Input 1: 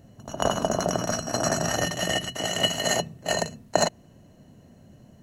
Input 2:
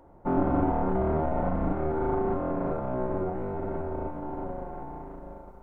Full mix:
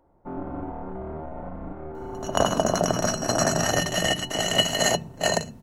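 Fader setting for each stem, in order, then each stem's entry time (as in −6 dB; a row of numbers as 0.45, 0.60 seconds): +2.5, −8.5 decibels; 1.95, 0.00 seconds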